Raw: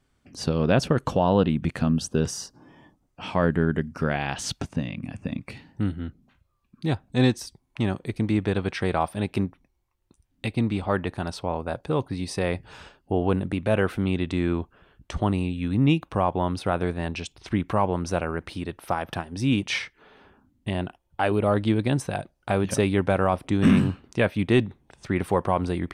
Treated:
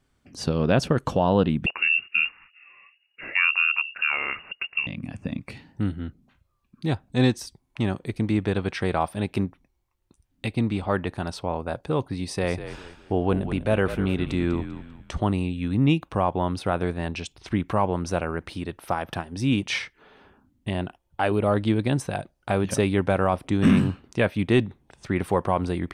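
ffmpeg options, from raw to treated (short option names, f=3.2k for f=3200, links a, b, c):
-filter_complex "[0:a]asettb=1/sr,asplit=3[a][b][c];[a]atrim=end=1.664[d];[b]atrim=start=1.66:end=4.87,asetpts=PTS-STARTPTS,afade=t=in:d=0.004:c=qsin,afade=t=out:st=3.206:d=0.004:c=qsin,lowpass=f=2.5k:t=q:w=0.5098,lowpass=f=2.5k:t=q:w=0.6013,lowpass=f=2.5k:t=q:w=0.9,lowpass=f=2.5k:t=q:w=2.563,afreqshift=-2900[e];[c]atrim=start=4.866[f];[d][e]acrossfade=d=0.004:c1=hsin:c2=qsin[g];[g][f]acrossfade=d=0.004:c1=qsin:c2=hsin,asettb=1/sr,asplit=3[h][i][j];[h]atrim=end=12.234[k];[i]atrim=start=12.23:end=15.11,asetpts=PTS-STARTPTS,afade=t=in:d=0.004:c=qsin,afade=t=out:st=2.876:d=0.004:c=qsin,asplit=5[l][m][n][o][p];[m]adelay=197,afreqshift=-48,volume=-11dB[q];[n]adelay=394,afreqshift=-96,volume=-19.9dB[r];[o]adelay=591,afreqshift=-144,volume=-28.7dB[s];[p]adelay=788,afreqshift=-192,volume=-37.6dB[t];[l][q][r][s][t]amix=inputs=5:normalize=0,atrim=end_sample=127008[u];[j]atrim=start=15.106[v];[k][u]acrossfade=d=0.004:c1=hsin:c2=qsin[w];[w][v]acrossfade=d=0.004:c1=qsin:c2=hsin"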